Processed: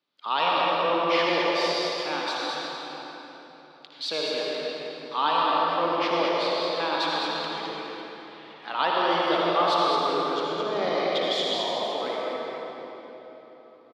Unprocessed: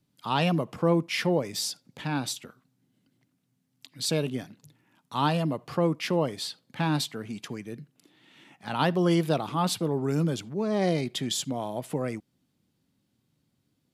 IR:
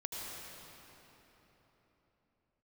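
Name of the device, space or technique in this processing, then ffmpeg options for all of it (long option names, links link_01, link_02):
station announcement: -filter_complex "[0:a]highpass=430,lowpass=4600,equalizer=frequency=1200:width_type=o:width=0.3:gain=6.5,aecho=1:1:58.31|212.8:0.316|0.501[link_01];[1:a]atrim=start_sample=2205[link_02];[link_01][link_02]afir=irnorm=-1:irlink=0,equalizer=frequency=125:width_type=o:width=1:gain=-9,equalizer=frequency=250:width_type=o:width=1:gain=-3,equalizer=frequency=4000:width_type=o:width=1:gain=6,equalizer=frequency=8000:width_type=o:width=1:gain=-10,volume=3.5dB"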